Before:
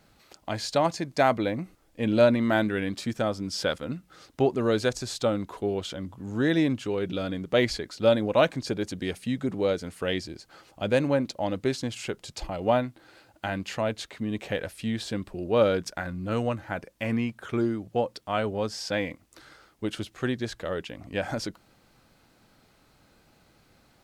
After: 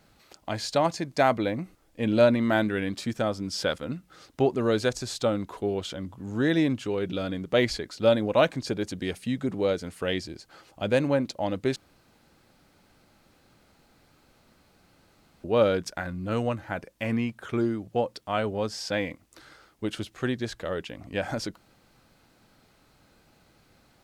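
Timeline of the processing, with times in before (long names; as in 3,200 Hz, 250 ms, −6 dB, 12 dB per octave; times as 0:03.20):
0:11.76–0:15.44: fill with room tone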